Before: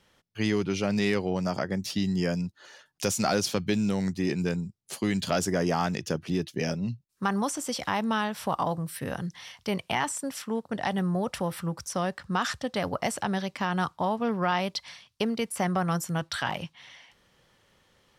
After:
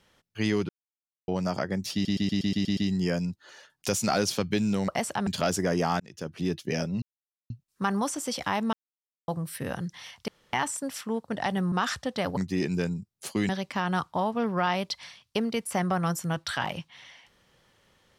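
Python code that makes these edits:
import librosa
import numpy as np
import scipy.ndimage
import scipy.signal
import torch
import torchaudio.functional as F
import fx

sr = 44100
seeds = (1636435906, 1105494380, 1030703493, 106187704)

y = fx.edit(x, sr, fx.silence(start_s=0.69, length_s=0.59),
    fx.stutter(start_s=1.93, slice_s=0.12, count=8),
    fx.swap(start_s=4.04, length_s=1.12, other_s=12.95, other_length_s=0.39),
    fx.fade_in_span(start_s=5.89, length_s=0.5),
    fx.insert_silence(at_s=6.91, length_s=0.48),
    fx.silence(start_s=8.14, length_s=0.55),
    fx.room_tone_fill(start_s=9.69, length_s=0.25),
    fx.cut(start_s=11.13, length_s=1.17), tone=tone)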